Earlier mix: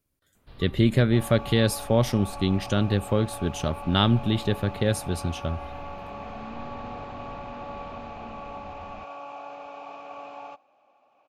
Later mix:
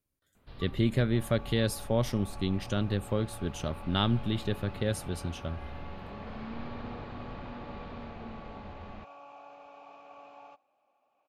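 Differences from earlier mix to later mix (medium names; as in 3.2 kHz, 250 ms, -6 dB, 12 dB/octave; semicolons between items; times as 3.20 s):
speech -6.5 dB; second sound -10.5 dB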